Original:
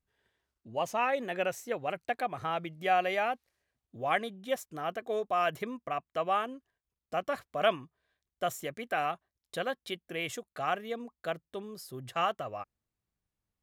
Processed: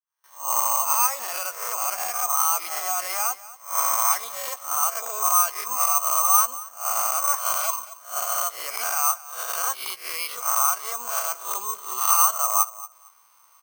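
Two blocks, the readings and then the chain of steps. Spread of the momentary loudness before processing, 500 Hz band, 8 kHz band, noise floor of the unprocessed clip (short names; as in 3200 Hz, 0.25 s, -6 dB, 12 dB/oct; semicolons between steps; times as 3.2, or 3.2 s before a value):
11 LU, -5.0 dB, +29.5 dB, under -85 dBFS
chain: spectral swells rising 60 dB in 0.55 s; recorder AGC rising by 58 dB/s; gate with hold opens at -48 dBFS; wavefolder -19 dBFS; bell 1700 Hz -11 dB 0.27 oct; doubler 16 ms -12.5 dB; feedback echo 0.231 s, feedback 17%, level -19.5 dB; limiter -20.5 dBFS, peak gain reduction 4 dB; resonant high-pass 1100 Hz, resonance Q 5.7; careless resampling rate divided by 6×, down filtered, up zero stuff; high shelf 4200 Hz -6 dB; gain -2 dB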